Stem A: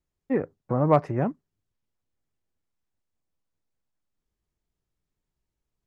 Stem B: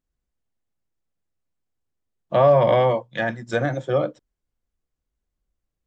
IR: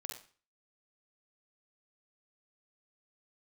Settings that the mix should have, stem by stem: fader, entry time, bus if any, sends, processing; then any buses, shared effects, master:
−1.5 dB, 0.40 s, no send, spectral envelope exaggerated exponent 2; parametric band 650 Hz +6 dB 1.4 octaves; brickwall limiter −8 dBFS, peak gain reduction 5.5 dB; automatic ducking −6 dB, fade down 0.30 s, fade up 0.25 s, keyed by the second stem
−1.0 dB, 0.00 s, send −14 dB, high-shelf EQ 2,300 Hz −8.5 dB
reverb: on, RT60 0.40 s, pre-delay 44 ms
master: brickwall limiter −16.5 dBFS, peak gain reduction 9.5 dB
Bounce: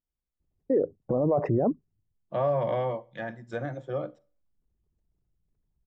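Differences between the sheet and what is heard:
stem A −1.5 dB → +8.0 dB
stem B −1.0 dB → −11.0 dB

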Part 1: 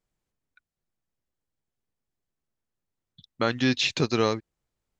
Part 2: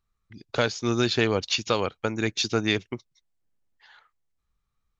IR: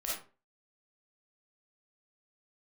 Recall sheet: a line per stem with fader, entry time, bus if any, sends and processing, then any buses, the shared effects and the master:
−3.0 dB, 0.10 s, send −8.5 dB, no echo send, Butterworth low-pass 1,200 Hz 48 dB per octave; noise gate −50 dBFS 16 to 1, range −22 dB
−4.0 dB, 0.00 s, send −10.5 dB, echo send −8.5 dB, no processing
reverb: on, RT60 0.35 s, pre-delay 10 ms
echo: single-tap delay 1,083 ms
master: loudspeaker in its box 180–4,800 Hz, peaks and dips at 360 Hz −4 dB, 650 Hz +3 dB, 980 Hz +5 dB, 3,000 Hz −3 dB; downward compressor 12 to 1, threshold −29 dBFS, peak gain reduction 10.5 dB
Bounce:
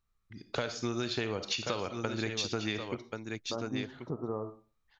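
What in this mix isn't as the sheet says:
stem 1 −3.0 dB → −12.5 dB
master: missing loudspeaker in its box 180–4,800 Hz, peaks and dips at 360 Hz −4 dB, 650 Hz +3 dB, 980 Hz +5 dB, 3,000 Hz −3 dB

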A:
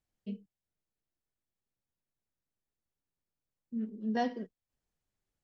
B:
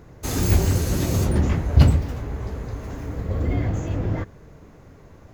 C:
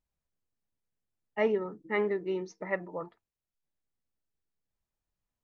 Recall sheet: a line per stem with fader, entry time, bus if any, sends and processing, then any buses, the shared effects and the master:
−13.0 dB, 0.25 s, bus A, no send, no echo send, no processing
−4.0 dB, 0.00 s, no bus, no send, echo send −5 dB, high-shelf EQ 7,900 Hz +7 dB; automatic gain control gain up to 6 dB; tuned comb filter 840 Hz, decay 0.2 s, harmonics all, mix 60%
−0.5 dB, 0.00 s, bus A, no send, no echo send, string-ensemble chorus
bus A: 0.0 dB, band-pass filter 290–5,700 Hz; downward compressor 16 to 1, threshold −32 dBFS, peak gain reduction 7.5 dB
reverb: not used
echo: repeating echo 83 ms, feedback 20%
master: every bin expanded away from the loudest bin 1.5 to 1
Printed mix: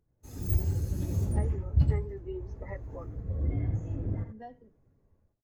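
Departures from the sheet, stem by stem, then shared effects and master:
stem A −13.0 dB → −3.0 dB
stem C −0.5 dB → +11.5 dB

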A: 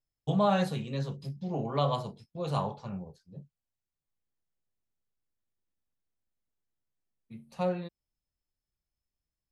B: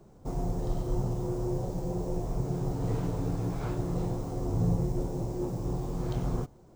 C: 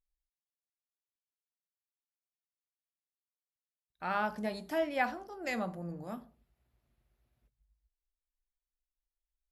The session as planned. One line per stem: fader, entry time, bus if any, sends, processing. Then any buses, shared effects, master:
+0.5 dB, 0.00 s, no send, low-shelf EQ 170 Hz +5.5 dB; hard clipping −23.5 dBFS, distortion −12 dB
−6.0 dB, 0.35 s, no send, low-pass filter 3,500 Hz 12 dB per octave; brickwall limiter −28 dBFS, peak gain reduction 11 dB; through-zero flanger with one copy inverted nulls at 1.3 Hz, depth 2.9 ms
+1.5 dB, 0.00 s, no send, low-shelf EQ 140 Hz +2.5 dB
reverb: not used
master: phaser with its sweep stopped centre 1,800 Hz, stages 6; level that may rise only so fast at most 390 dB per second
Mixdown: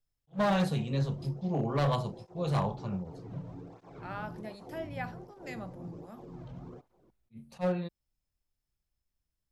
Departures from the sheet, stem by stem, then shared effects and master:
stem C +1.5 dB → −8.0 dB
master: missing phaser with its sweep stopped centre 1,800 Hz, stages 6

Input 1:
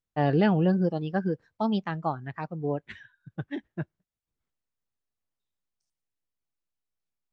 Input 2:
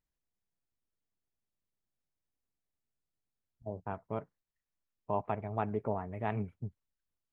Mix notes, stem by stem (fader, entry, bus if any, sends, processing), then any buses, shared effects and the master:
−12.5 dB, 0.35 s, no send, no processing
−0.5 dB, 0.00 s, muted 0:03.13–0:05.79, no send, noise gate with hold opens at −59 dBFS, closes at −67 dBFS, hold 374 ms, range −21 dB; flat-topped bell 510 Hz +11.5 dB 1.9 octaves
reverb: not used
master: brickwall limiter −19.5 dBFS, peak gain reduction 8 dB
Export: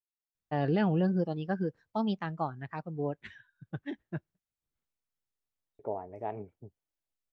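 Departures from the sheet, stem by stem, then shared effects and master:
stem 1 −12.5 dB → −4.0 dB
stem 2 −0.5 dB → −11.0 dB

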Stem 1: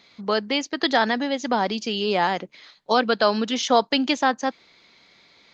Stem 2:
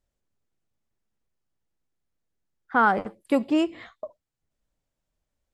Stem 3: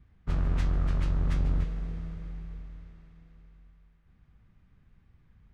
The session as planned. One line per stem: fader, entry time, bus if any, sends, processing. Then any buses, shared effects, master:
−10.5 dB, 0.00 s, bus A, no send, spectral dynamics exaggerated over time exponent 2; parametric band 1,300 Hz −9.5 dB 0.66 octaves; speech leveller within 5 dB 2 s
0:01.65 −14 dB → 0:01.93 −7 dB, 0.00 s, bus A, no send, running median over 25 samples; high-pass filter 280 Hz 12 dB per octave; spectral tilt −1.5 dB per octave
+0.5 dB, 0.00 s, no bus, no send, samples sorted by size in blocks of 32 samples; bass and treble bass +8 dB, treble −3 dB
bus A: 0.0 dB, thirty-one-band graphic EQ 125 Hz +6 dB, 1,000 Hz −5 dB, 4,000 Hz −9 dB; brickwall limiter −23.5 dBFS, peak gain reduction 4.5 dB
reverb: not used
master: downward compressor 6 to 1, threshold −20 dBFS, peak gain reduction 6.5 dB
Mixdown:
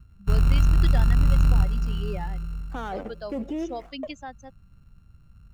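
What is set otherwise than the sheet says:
stem 2 −14.0 dB → −4.5 dB
master: missing downward compressor 6 to 1, threshold −20 dBFS, peak gain reduction 6.5 dB

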